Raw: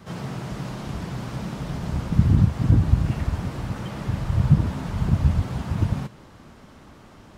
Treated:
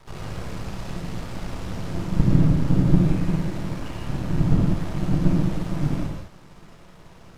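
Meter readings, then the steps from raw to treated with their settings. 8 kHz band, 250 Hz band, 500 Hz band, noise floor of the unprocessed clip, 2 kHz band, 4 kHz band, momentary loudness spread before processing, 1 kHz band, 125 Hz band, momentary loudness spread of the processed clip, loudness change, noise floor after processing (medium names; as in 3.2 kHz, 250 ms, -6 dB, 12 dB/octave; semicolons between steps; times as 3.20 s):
no reading, +3.5 dB, +3.5 dB, -48 dBFS, -0.5 dB, 0.0 dB, 13 LU, -1.0 dB, -1.5 dB, 15 LU, -0.5 dB, -48 dBFS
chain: frequency shift -240 Hz; half-wave rectifier; gated-style reverb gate 230 ms flat, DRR -2 dB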